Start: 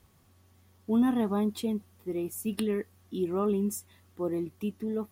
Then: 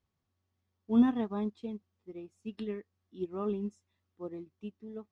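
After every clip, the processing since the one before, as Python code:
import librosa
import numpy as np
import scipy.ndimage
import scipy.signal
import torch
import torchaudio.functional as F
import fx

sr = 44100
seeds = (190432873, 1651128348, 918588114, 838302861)

y = scipy.signal.sosfilt(scipy.signal.butter(4, 6300.0, 'lowpass', fs=sr, output='sos'), x)
y = fx.upward_expand(y, sr, threshold_db=-36.0, expansion=2.5)
y = F.gain(torch.from_numpy(y), 2.5).numpy()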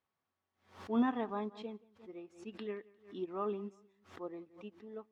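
y = fx.bandpass_q(x, sr, hz=1200.0, q=0.64)
y = fx.echo_feedback(y, sr, ms=176, feedback_pct=37, wet_db=-23)
y = fx.pre_swell(y, sr, db_per_s=140.0)
y = F.gain(torch.from_numpy(y), 3.0).numpy()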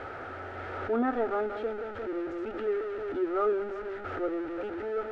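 y = x + 0.5 * 10.0 ** (-36.0 / 20.0) * np.sign(x)
y = fx.lowpass_res(y, sr, hz=1300.0, q=7.1)
y = fx.fixed_phaser(y, sr, hz=450.0, stages=4)
y = F.gain(torch.from_numpy(y), 7.0).numpy()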